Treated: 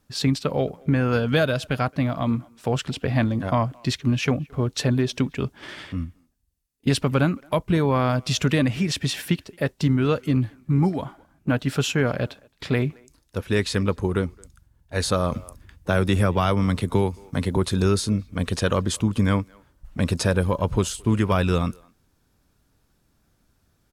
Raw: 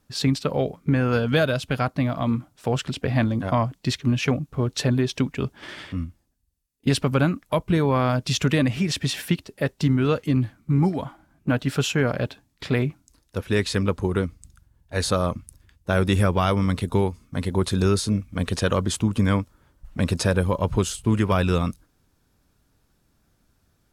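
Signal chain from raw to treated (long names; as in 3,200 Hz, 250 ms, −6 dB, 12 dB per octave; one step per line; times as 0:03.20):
far-end echo of a speakerphone 220 ms, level −26 dB
0:15.32–0:17.57: multiband upward and downward compressor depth 40%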